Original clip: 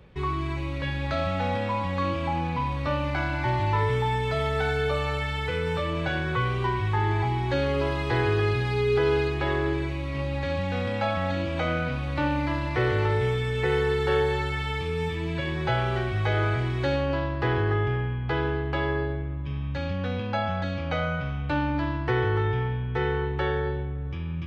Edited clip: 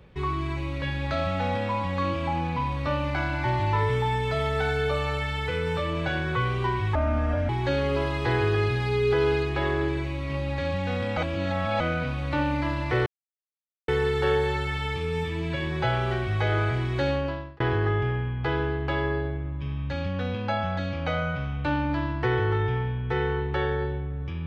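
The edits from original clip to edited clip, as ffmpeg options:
-filter_complex "[0:a]asplit=8[s0][s1][s2][s3][s4][s5][s6][s7];[s0]atrim=end=6.954[s8];[s1]atrim=start=6.95:end=7.34,asetpts=PTS-STARTPTS,asetrate=31752,aresample=44100[s9];[s2]atrim=start=7.336:end=11.022[s10];[s3]atrim=start=11.018:end=11.652,asetpts=PTS-STARTPTS,areverse[s11];[s4]atrim=start=11.648:end=12.91,asetpts=PTS-STARTPTS,afade=t=out:st=1.258:d=0.004:c=hsin[s12];[s5]atrim=start=12.91:end=13.73,asetpts=PTS-STARTPTS,volume=0[s13];[s6]atrim=start=13.73:end=17.45,asetpts=PTS-STARTPTS,afade=t=in:d=0.004:c=hsin,afade=t=out:st=3.27:d=0.45[s14];[s7]atrim=start=17.45,asetpts=PTS-STARTPTS,afade=t=in:d=0.004:c=hsin[s15];[s8][s9]acrossfade=d=0.004:c1=hsin:c2=hsin[s16];[s16][s10]acrossfade=d=0.004:c1=hsin:c2=hsin[s17];[s17][s11]acrossfade=d=0.004:c1=hsin:c2=hsin[s18];[s12][s13][s14][s15]concat=n=4:v=0:a=1[s19];[s18][s19]acrossfade=d=0.004:c1=hsin:c2=hsin"

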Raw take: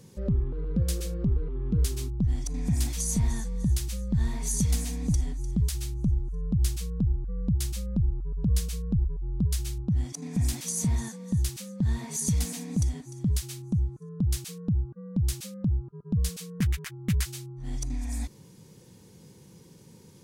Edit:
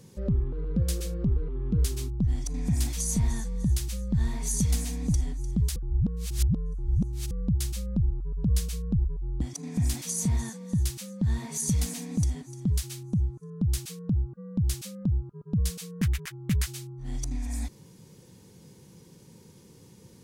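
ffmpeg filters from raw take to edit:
-filter_complex "[0:a]asplit=4[s0][s1][s2][s3];[s0]atrim=end=5.762[s4];[s1]atrim=start=5.758:end=7.312,asetpts=PTS-STARTPTS,areverse[s5];[s2]atrim=start=7.308:end=9.412[s6];[s3]atrim=start=9.998[s7];[s4][s5]acrossfade=d=0.004:c1=hsin:c2=hsin[s8];[s8][s6]acrossfade=d=0.004:c1=hsin:c2=hsin[s9];[s9][s7]acrossfade=d=0.004:c1=hsin:c2=hsin"

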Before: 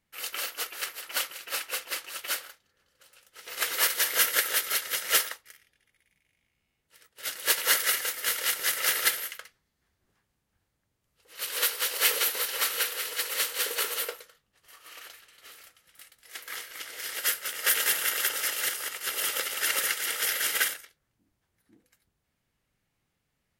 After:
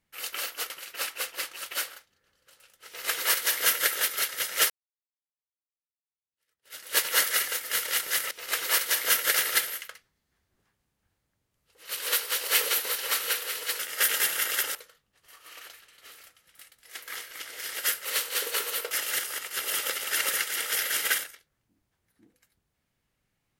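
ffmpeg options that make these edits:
-filter_complex "[0:a]asplit=9[s0][s1][s2][s3][s4][s5][s6][s7][s8];[s0]atrim=end=0.702[s9];[s1]atrim=start=1.228:end=5.23,asetpts=PTS-STARTPTS,afade=t=out:st=3.998:d=0.004:c=hsin[s10];[s2]atrim=start=5.23:end=8.842,asetpts=PTS-STARTPTS,afade=t=in:d=2.26:c=exp[s11];[s3]atrim=start=3.398:end=4.432[s12];[s4]atrim=start=8.838:end=13.292[s13];[s5]atrim=start=17.448:end=18.412[s14];[s6]atrim=start=14.148:end=17.452[s15];[s7]atrim=start=13.288:end=14.152[s16];[s8]atrim=start=18.408[s17];[s10][s11]concat=n=2:v=0:a=1[s18];[s9][s18]acrossfade=d=0.004:c1=hsin:c2=hsin[s19];[s19][s12]acrossfade=d=0.004:c1=hsin:c2=hsin[s20];[s20][s13]acrossfade=d=0.004:c1=hsin:c2=hsin[s21];[s21][s14]acrossfade=d=0.004:c1=hsin:c2=hsin[s22];[s22][s15]acrossfade=d=0.004:c1=hsin:c2=hsin[s23];[s23][s16]acrossfade=d=0.004:c1=hsin:c2=hsin[s24];[s24][s17]acrossfade=d=0.004:c1=hsin:c2=hsin"

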